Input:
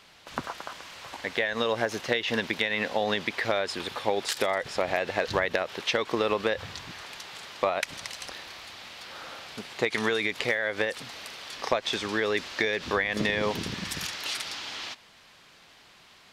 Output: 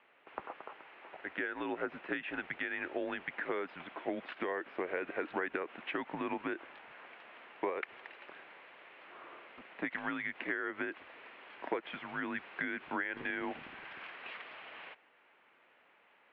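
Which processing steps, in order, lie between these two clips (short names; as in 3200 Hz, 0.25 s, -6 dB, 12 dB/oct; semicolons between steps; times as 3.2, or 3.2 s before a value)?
mistuned SSB -180 Hz 460–2800 Hz; gain -8.5 dB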